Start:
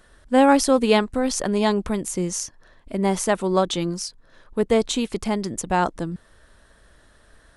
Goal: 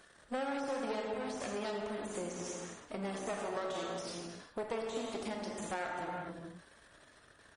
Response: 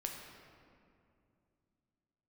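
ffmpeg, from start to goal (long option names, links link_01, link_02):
-filter_complex "[0:a]asettb=1/sr,asplit=3[link_01][link_02][link_03];[link_01]atrim=end=1.874[link_04];[link_02]atrim=start=1.87:end=3.98,asetpts=PTS-STARTPTS,afade=type=in:duration=0.004:curve=qsin,afade=type=out:start_time=2.106:duration=0.004:curve=qsin,asplit=5[link_05][link_06][link_07][link_08][link_09];[link_06]adelay=81,afreqshift=65,volume=-15.5dB[link_10];[link_07]adelay=162,afreqshift=130,volume=-22.2dB[link_11];[link_08]adelay=243,afreqshift=195,volume=-29dB[link_12];[link_09]adelay=324,afreqshift=260,volume=-35.7dB[link_13];[link_05][link_10][link_11][link_12][link_13]amix=inputs=5:normalize=0,atrim=end_sample=93051[link_14];[link_03]atrim=start=3.976[link_15];[link_04][link_14]acrossfade=duration=0.004:curve1=hsin:curve2=qsin[link_16];[link_16][link_15]acrossfade=duration=0.004:curve1=qsin:curve2=hsin,aeval=exprs='max(val(0),0)':channel_layout=same[link_17];[1:a]atrim=start_sample=2205,afade=type=out:start_time=0.38:duration=0.01,atrim=end_sample=17199,asetrate=32193,aresample=44100[link_18];[link_17][link_18]afir=irnorm=-1:irlink=0,deesser=0.75,highpass=frequency=250:poles=1,acompressor=threshold=-38dB:ratio=3,aresample=22050,aresample=44100" -ar 44100 -c:a libmp3lame -b:a 40k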